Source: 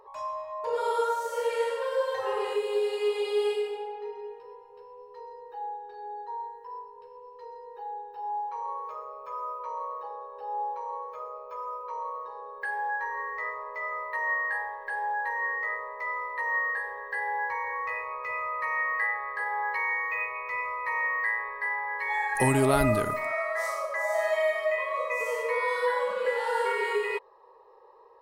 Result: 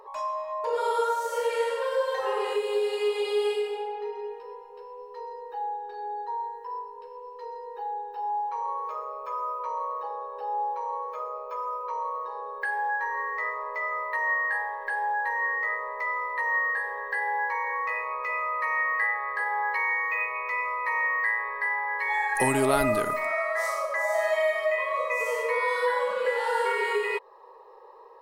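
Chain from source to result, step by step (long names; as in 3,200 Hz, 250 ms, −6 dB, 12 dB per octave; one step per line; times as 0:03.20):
parametric band 74 Hz −12.5 dB 2.3 octaves
in parallel at 0 dB: downward compressor, threshold −37 dBFS, peak gain reduction 16.5 dB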